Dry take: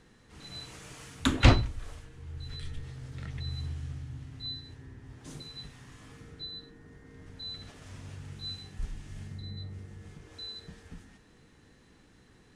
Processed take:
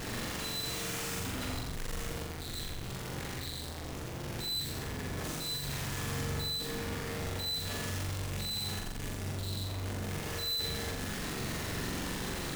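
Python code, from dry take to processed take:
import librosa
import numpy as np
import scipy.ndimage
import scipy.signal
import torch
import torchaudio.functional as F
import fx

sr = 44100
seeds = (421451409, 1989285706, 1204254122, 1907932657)

p1 = np.sign(x) * np.sqrt(np.mean(np.square(x)))
p2 = p1 + fx.room_flutter(p1, sr, wall_m=7.4, rt60_s=0.85, dry=0)
y = p2 * 10.0 ** (-4.5 / 20.0)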